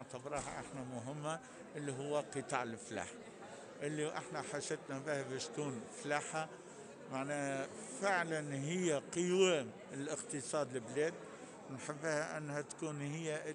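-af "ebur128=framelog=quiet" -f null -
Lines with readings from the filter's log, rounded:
Integrated loudness:
  I:         -40.4 LUFS
  Threshold: -50.7 LUFS
Loudness range:
  LRA:         5.7 LU
  Threshold: -60.4 LUFS
  LRA low:   -43.2 LUFS
  LRA high:  -37.5 LUFS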